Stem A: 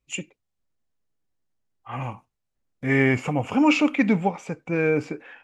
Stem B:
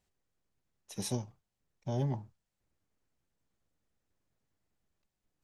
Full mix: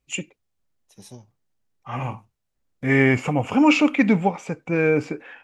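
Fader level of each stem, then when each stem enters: +2.5, −8.0 decibels; 0.00, 0.00 seconds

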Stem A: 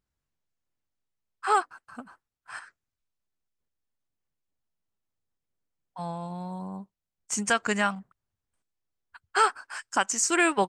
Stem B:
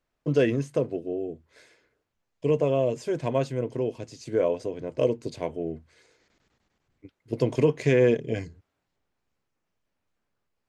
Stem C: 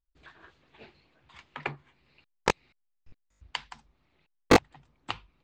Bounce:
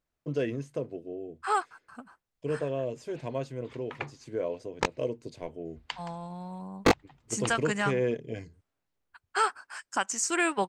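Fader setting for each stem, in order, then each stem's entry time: −4.0, −8.0, −3.0 decibels; 0.00, 0.00, 2.35 seconds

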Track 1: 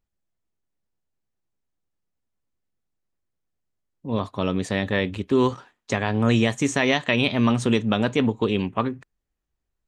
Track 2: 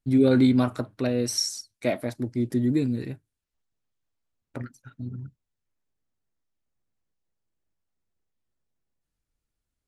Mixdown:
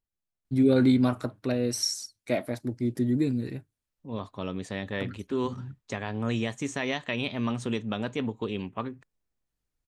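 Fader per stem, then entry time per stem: −9.5, −2.0 decibels; 0.00, 0.45 seconds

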